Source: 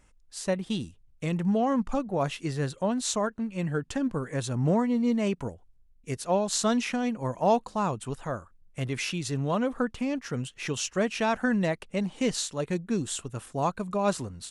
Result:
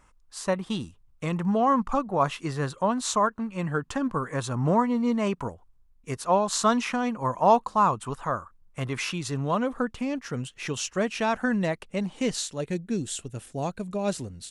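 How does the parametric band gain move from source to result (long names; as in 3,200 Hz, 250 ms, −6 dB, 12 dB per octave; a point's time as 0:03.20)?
parametric band 1,100 Hz 0.8 octaves
0:09.07 +11.5 dB
0:09.78 +2 dB
0:12.18 +2 dB
0:12.92 −10 dB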